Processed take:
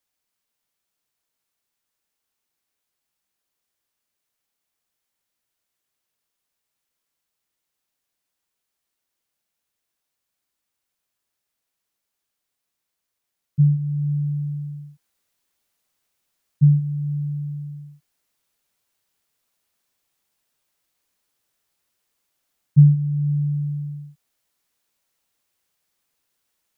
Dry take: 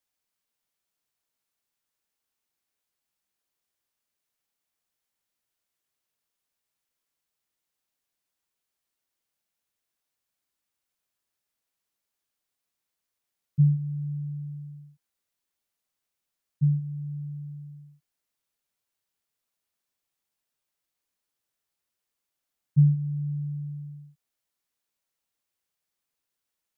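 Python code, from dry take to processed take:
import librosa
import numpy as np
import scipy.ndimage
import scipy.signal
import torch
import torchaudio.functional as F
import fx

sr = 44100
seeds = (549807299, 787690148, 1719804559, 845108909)

y = fx.rider(x, sr, range_db=3, speed_s=0.5)
y = y * librosa.db_to_amplitude(6.5)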